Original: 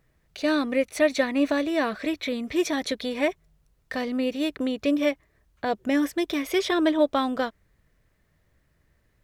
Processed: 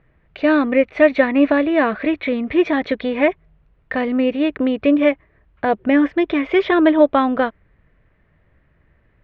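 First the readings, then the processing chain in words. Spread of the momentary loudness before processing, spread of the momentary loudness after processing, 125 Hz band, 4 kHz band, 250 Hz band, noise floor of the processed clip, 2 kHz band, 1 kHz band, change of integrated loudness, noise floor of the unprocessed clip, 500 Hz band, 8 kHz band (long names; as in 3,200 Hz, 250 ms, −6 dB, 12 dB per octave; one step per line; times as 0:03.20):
7 LU, 7 LU, can't be measured, −0.5 dB, +8.5 dB, −60 dBFS, +8.0 dB, +8.5 dB, +8.0 dB, −68 dBFS, +8.5 dB, below −20 dB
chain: low-pass filter 2,700 Hz 24 dB per octave
level +8.5 dB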